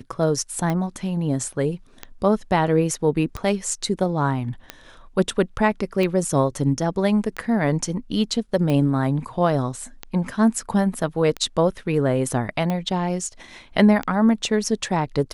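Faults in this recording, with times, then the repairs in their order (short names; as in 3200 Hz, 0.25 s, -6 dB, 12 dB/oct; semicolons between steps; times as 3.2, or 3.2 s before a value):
tick 45 rpm -13 dBFS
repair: de-click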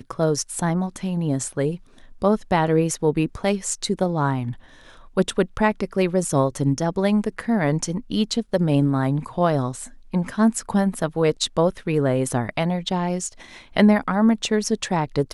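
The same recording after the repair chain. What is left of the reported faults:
none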